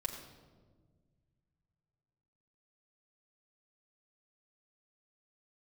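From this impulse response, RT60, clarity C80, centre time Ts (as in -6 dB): 1.5 s, 6.5 dB, 36 ms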